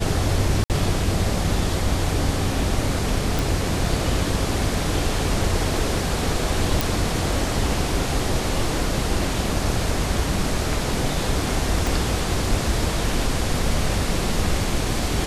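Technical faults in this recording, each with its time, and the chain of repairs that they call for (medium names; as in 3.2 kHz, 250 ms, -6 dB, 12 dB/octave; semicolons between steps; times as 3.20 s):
0.64–0.70 s: dropout 58 ms
3.39 s: pop
6.81 s: pop
11.87 s: pop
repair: de-click; interpolate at 0.64 s, 58 ms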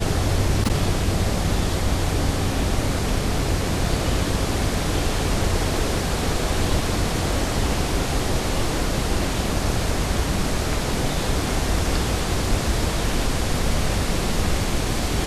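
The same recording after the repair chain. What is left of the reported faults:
11.87 s: pop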